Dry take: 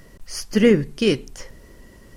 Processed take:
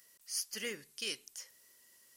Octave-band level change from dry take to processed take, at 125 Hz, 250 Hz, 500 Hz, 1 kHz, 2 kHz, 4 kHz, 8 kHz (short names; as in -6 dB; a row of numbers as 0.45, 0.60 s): -36.5, -33.5, -28.0, -20.5, -14.0, -10.0, -4.0 dB